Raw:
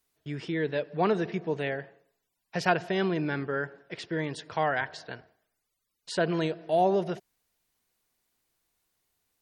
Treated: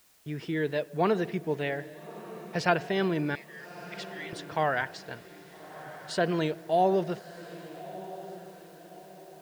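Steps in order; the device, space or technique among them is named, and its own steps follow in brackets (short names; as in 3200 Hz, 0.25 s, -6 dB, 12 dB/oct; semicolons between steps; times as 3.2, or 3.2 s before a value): plain cassette with noise reduction switched in (mismatched tape noise reduction decoder only; wow and flutter; white noise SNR 31 dB); 3.35–4.33 steep high-pass 1800 Hz 96 dB/oct; diffused feedback echo 1.259 s, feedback 43%, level -15 dB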